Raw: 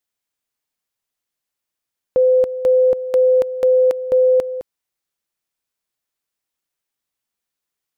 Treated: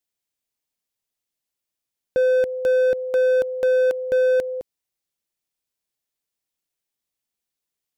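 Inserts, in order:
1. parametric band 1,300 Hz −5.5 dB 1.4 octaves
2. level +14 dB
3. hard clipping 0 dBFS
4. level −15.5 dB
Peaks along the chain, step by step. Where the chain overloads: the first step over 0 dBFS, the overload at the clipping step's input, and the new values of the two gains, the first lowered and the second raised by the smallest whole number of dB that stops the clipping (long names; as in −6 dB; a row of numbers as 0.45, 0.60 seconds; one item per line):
−10.5, +3.5, 0.0, −15.5 dBFS
step 2, 3.5 dB
step 2 +10 dB, step 4 −11.5 dB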